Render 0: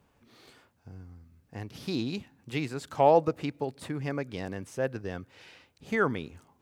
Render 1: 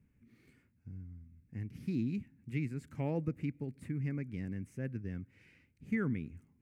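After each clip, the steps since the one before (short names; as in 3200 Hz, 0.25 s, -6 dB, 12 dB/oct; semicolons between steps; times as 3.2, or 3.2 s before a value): EQ curve 230 Hz 0 dB, 730 Hz -25 dB, 1100 Hz -22 dB, 2200 Hz -6 dB, 3500 Hz -24 dB, 9100 Hz -13 dB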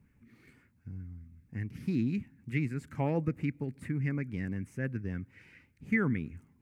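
LFO bell 5.3 Hz 830–1900 Hz +9 dB; gain +4 dB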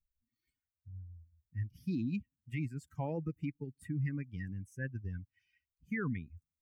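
per-bin expansion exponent 2; limiter -30.5 dBFS, peak gain reduction 11.5 dB; gain +2.5 dB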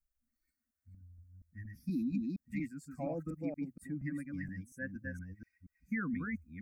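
reverse delay 0.236 s, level -3 dB; fixed phaser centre 610 Hz, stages 8; gain +2 dB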